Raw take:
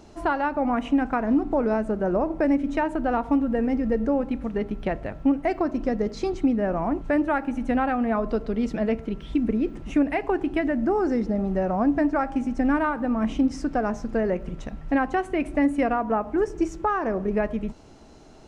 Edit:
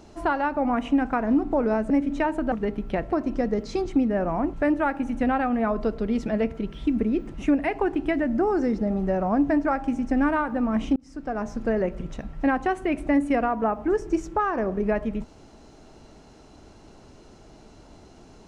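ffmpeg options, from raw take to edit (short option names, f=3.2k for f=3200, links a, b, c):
-filter_complex "[0:a]asplit=5[a][b][c][d][e];[a]atrim=end=1.902[f];[b]atrim=start=2.468:end=3.092[g];[c]atrim=start=4.448:end=5.052[h];[d]atrim=start=5.598:end=13.44,asetpts=PTS-STARTPTS,afade=t=out:st=7.838:d=0.004:c=hsin[i];[e]atrim=start=13.44,asetpts=PTS-STARTPTS,afade=t=in:d=0.63[j];[f][g]acrossfade=d=0.004:c1=hsin:c2=hsin[k];[k][h]acrossfade=d=0.004:c1=hsin:c2=hsin[l];[i][j]concat=n=2:v=0:a=1[m];[l][m]acrossfade=d=0.004:c1=hsin:c2=hsin"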